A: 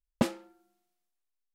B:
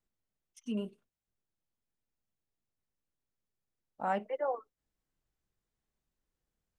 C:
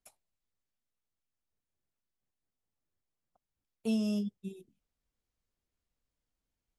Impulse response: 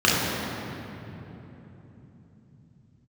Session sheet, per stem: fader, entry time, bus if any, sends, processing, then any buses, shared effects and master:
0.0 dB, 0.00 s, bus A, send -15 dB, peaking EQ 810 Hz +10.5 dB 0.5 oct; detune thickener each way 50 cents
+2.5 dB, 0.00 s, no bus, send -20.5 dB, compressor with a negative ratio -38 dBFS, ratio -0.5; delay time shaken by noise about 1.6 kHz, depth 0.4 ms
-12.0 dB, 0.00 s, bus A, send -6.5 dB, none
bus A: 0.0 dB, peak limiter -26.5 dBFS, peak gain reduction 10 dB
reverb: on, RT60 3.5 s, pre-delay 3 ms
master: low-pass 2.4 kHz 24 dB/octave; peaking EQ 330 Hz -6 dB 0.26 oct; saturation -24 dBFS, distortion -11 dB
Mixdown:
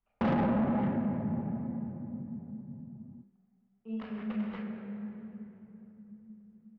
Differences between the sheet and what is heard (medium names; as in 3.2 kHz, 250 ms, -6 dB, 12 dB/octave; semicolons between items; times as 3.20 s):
stem A: missing detune thickener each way 50 cents; stem B +2.5 dB -> -7.0 dB; stem C -12.0 dB -> -23.5 dB